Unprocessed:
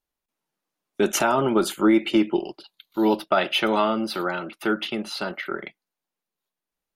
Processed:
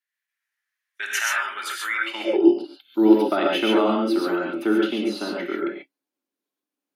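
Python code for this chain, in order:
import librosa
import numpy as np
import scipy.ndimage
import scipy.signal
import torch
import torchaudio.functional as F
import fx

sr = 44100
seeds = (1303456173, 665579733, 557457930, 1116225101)

y = fx.rev_gated(x, sr, seeds[0], gate_ms=160, shape='rising', drr_db=-1.5)
y = fx.filter_sweep_highpass(y, sr, from_hz=1800.0, to_hz=280.0, start_s=1.97, end_s=2.5, q=6.8)
y = F.gain(torch.from_numpy(y), -5.5).numpy()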